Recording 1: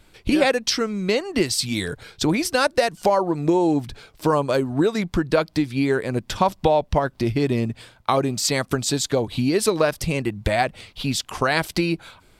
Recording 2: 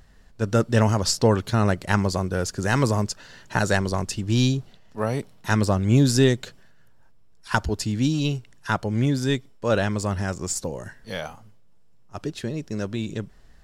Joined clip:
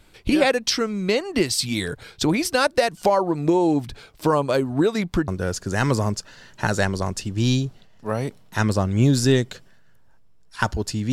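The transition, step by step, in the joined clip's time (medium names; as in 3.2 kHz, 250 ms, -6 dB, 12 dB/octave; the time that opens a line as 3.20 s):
recording 1
5.28 s: go over to recording 2 from 2.20 s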